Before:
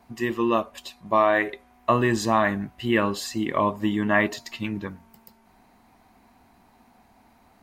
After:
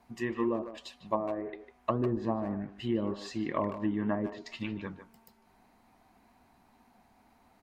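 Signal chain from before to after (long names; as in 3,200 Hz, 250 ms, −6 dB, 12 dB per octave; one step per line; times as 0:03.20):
treble cut that deepens with the level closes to 420 Hz, closed at −16.5 dBFS
flanger 1.9 Hz, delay 1.6 ms, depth 6.3 ms, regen +81%
far-end echo of a speakerphone 150 ms, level −10 dB
level −2 dB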